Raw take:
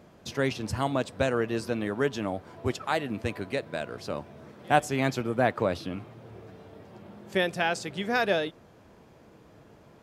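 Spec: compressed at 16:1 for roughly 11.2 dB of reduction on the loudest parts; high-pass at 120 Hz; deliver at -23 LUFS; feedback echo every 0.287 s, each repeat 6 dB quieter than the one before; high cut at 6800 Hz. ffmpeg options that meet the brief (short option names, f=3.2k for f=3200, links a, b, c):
-af "highpass=120,lowpass=6.8k,acompressor=threshold=-27dB:ratio=16,aecho=1:1:287|574|861|1148|1435|1722:0.501|0.251|0.125|0.0626|0.0313|0.0157,volume=11dB"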